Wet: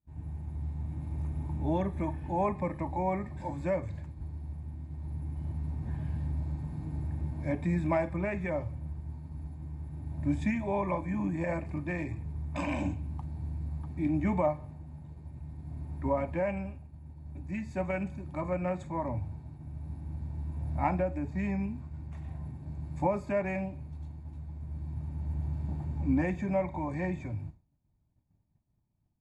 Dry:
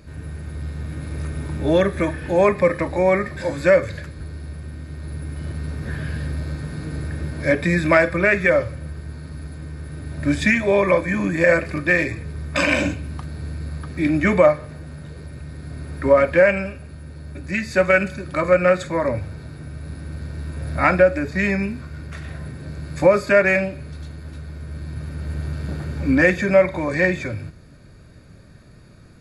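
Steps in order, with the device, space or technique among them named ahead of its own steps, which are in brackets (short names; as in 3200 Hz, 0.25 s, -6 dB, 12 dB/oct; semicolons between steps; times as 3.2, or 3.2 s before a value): hearing-loss simulation (LPF 3200 Hz 12 dB/oct; expander -32 dBFS); EQ curve 100 Hz 0 dB, 200 Hz -3 dB, 310 Hz -4 dB, 490 Hz -16 dB, 870 Hz +4 dB, 1400 Hz -21 dB, 2200 Hz -13 dB, 4700 Hz -13 dB, 7400 Hz +3 dB, 11000 Hz +6 dB; gain -6 dB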